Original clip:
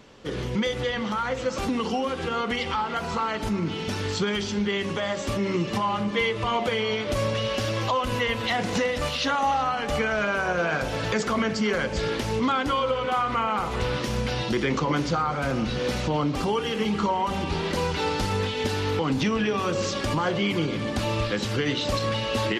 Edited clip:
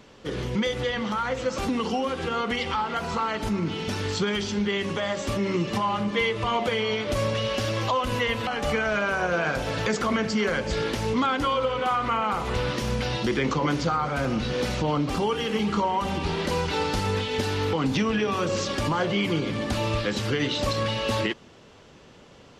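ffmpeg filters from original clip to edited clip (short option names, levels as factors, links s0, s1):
-filter_complex "[0:a]asplit=2[s0][s1];[s0]atrim=end=8.472[s2];[s1]atrim=start=9.728[s3];[s2][s3]acrossfade=d=0.004:c1=hsin:c2=hsin"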